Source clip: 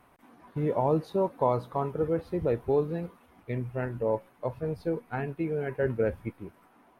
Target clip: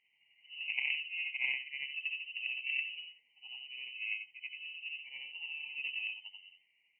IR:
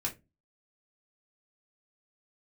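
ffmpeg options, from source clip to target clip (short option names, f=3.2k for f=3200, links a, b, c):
-af "afftfilt=real='re':imag='-im':win_size=8192:overlap=0.75,bandreject=f=50:t=h:w=6,bandreject=f=100:t=h:w=6,bandreject=f=150:t=h:w=6,bandreject=f=200:t=h:w=6,aeval=exprs='0.133*(cos(1*acos(clip(val(0)/0.133,-1,1)))-cos(1*PI/2))+0.0299*(cos(3*acos(clip(val(0)/0.133,-1,1)))-cos(3*PI/2))+0.000841*(cos(6*acos(clip(val(0)/0.133,-1,1)))-cos(6*PI/2))':c=same,asuperstop=centerf=1600:order=12:qfactor=1.5,lowpass=f=2.6k:t=q:w=0.5098,lowpass=f=2.6k:t=q:w=0.6013,lowpass=f=2.6k:t=q:w=0.9,lowpass=f=2.6k:t=q:w=2.563,afreqshift=-3100,equalizer=f=160:t=o:w=0.67:g=9,equalizer=f=630:t=o:w=0.67:g=-10,equalizer=f=1.6k:t=o:w=0.67:g=6"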